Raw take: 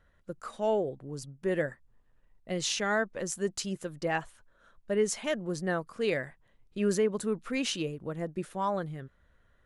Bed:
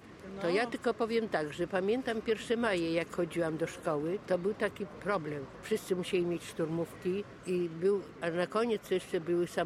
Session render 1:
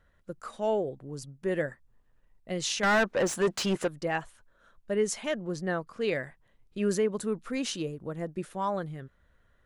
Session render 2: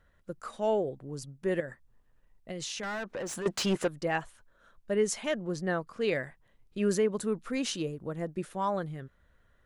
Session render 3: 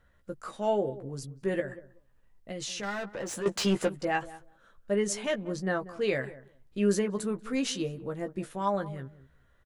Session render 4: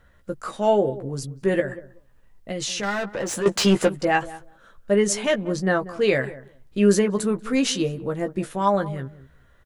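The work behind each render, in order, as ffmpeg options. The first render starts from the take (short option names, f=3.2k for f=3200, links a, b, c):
-filter_complex "[0:a]asettb=1/sr,asplit=3[a][b][c];[a]atrim=end=2.834[d];[b]atrim=start=2.83:end=3.88,asetpts=PTS-STARTPTS,afade=t=in:d=0.004:c=qsin,afade=t=out:st=1.046:d=0.004:c=qsin,asplit=2[e][f];[f]highpass=f=720:p=1,volume=26dB,asoftclip=type=tanh:threshold=-16dB[g];[e][g]amix=inputs=2:normalize=0,lowpass=f=2k:p=1,volume=-6dB[h];[c]atrim=start=3.876[i];[d][h]acrossfade=d=0.004:c1=hsin:c2=qsin[j];[j][i]acrossfade=d=0.004:c1=qsin:c2=hsin,asettb=1/sr,asplit=3[k][l][m];[k]atrim=end=5.274[n];[l]atrim=start=5.27:end=6.15,asetpts=PTS-STARTPTS,afade=t=in:d=0.004:c=qsin,afade=t=out:st=0.876:d=0.004:c=qsin,equalizer=f=9.5k:t=o:w=0.77:g=-7[o];[m]atrim=start=6.146[p];[n][o]acrossfade=d=0.004:c1=hsin:c2=qsin[q];[q][p]acrossfade=d=0.004:c1=qsin:c2=hsin,asettb=1/sr,asplit=3[r][s][t];[r]atrim=end=7.464[u];[s]atrim=start=7.46:end=8.16,asetpts=PTS-STARTPTS,afade=t=in:d=0.004:c=qsin,afade=t=out:st=0.696:d=0.004:c=qsin,equalizer=f=2.6k:t=o:w=0.77:g=-5[v];[t]atrim=start=8.156[w];[u][v]acrossfade=d=0.004:c1=hsin:c2=qsin[x];[x][w]acrossfade=d=0.004:c1=qsin:c2=hsin"
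-filter_complex "[0:a]asettb=1/sr,asplit=3[a][b][c];[a]atrim=end=1.604[d];[b]atrim=start=1.6:end=3.46,asetpts=PTS-STARTPTS,afade=t=in:d=0.004:c=qsin,afade=t=out:st=1.856:d=0.004:c=qsin,acompressor=threshold=-34dB:ratio=6:attack=3.2:release=140:knee=1:detection=peak[e];[c]atrim=start=3.456[f];[d][e]acrossfade=d=0.004:c1=hsin:c2=qsin[g];[g][f]acrossfade=d=0.004:c1=qsin:c2=hsin"
-filter_complex "[0:a]asplit=2[a][b];[b]adelay=15,volume=-6.5dB[c];[a][c]amix=inputs=2:normalize=0,asplit=2[d][e];[e]adelay=188,lowpass=f=840:p=1,volume=-15dB,asplit=2[f][g];[g]adelay=188,lowpass=f=840:p=1,volume=0.16[h];[d][f][h]amix=inputs=3:normalize=0"
-af "volume=8.5dB"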